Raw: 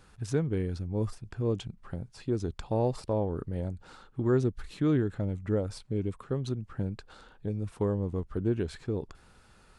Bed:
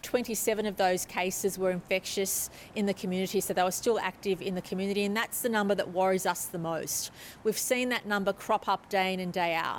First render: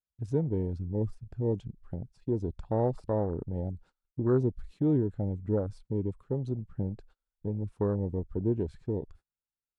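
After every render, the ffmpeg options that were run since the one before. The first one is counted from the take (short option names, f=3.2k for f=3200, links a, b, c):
-af "afwtdn=0.0158,agate=range=-30dB:threshold=-52dB:ratio=16:detection=peak"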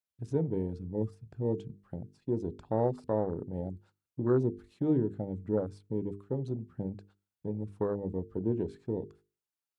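-af "highpass=120,bandreject=f=50:t=h:w=6,bandreject=f=100:t=h:w=6,bandreject=f=150:t=h:w=6,bandreject=f=200:t=h:w=6,bandreject=f=250:t=h:w=6,bandreject=f=300:t=h:w=6,bandreject=f=350:t=h:w=6,bandreject=f=400:t=h:w=6,bandreject=f=450:t=h:w=6"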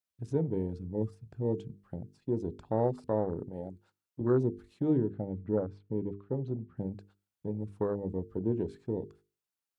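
-filter_complex "[0:a]asettb=1/sr,asplit=3[a][b][c];[a]atrim=end=3.494[d];[b]atrim=start=3.49:end=4.21,asetpts=PTS-STARTPTS,afade=t=in:d=0.004:c=qsin,afade=t=out:st=0.716:d=0.004:c=qsin,lowshelf=f=170:g=-11.5[e];[c]atrim=start=4.206[f];[d][e]acrossfade=d=0.004:c1=hsin:c2=qsin[g];[g][f]acrossfade=d=0.004:c1=qsin:c2=hsin,asettb=1/sr,asplit=3[h][i][j];[h]atrim=end=5.104[k];[i]atrim=start=5.1:end=6.77,asetpts=PTS-STARTPTS,afade=t=in:d=0.004:c=qsin,afade=t=out:st=1.666:d=0.004:c=qsin,lowpass=2.9k[l];[j]atrim=start=6.766[m];[k][l]acrossfade=d=0.004:c1=hsin:c2=qsin[n];[n][m]acrossfade=d=0.004:c1=qsin:c2=hsin"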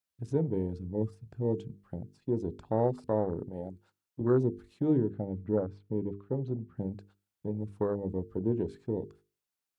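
-af "volume=1dB"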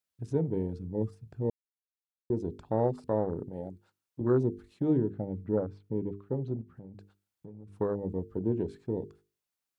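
-filter_complex "[0:a]asettb=1/sr,asplit=3[a][b][c];[a]atrim=end=6.614[d];[b]atrim=start=6.61:end=7.76,asetpts=PTS-STARTPTS,afade=t=in:d=0.004:c=qsin,afade=t=out:st=1.146:d=0.004:c=qsin,acompressor=threshold=-44dB:ratio=5:attack=3.2:release=140:knee=1:detection=peak[e];[c]atrim=start=7.756[f];[d][e]acrossfade=d=0.004:c1=hsin:c2=qsin[g];[g][f]acrossfade=d=0.004:c1=qsin:c2=hsin,asplit=3[h][i][j];[h]atrim=end=1.5,asetpts=PTS-STARTPTS,afade=t=out:st=1.496:d=0.004:c=hsin[k];[i]atrim=start=1.5:end=2.3,asetpts=PTS-STARTPTS,volume=0[l];[j]atrim=start=2.3,asetpts=PTS-STARTPTS,afade=t=in:d=0.004:c=hsin[m];[k][l][m]concat=n=3:v=0:a=1"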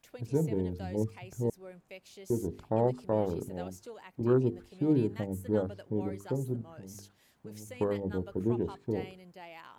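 -filter_complex "[1:a]volume=-19.5dB[a];[0:a][a]amix=inputs=2:normalize=0"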